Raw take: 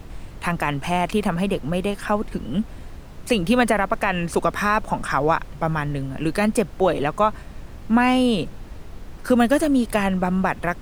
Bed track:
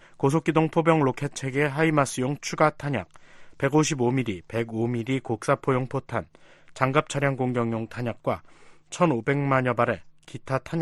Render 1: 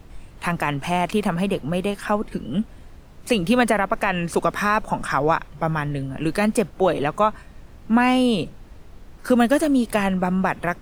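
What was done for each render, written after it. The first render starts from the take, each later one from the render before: noise print and reduce 6 dB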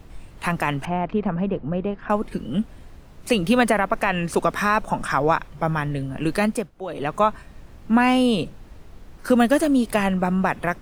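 0.85–2.1 tape spacing loss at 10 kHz 45 dB; 6.41–7.17 dip -13.5 dB, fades 0.30 s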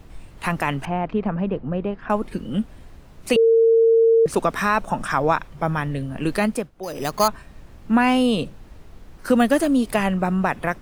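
3.36–4.26 bleep 455 Hz -11.5 dBFS; 6.83–7.28 careless resampling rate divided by 8×, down none, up hold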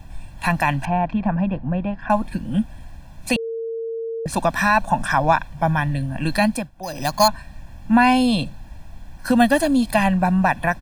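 comb 1.2 ms, depth 95%; dynamic EQ 4100 Hz, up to +6 dB, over -51 dBFS, Q 6.1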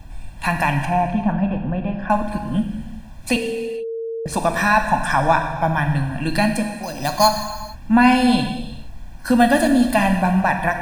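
non-linear reverb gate 0.49 s falling, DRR 4.5 dB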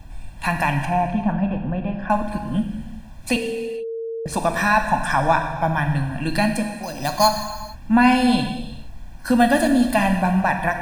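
gain -1.5 dB

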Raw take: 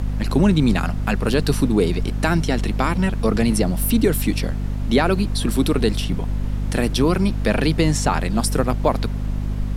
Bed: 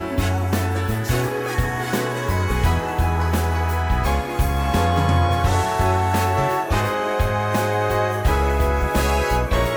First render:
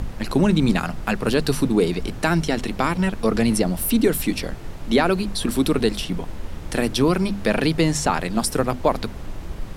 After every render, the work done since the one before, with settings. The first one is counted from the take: notches 50/100/150/200/250 Hz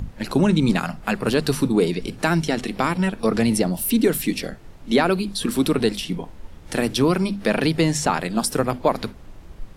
noise print and reduce 10 dB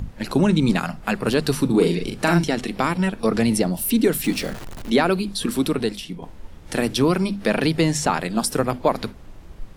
1.65–2.44 doubler 41 ms -4 dB; 4.24–4.9 zero-crossing step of -30.5 dBFS; 5.41–6.22 fade out, to -7.5 dB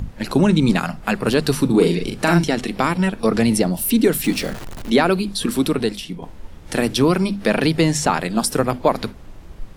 gain +2.5 dB; limiter -2 dBFS, peak gain reduction 1.5 dB

